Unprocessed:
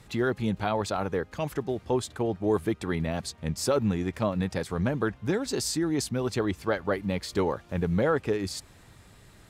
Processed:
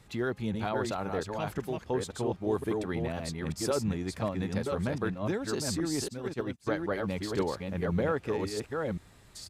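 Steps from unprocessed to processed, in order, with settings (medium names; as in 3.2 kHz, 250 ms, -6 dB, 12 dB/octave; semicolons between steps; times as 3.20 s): chunks repeated in reverse 528 ms, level -3.5 dB; resampled via 32 kHz; 6.08–6.67 s: upward expansion 2.5:1, over -44 dBFS; trim -5 dB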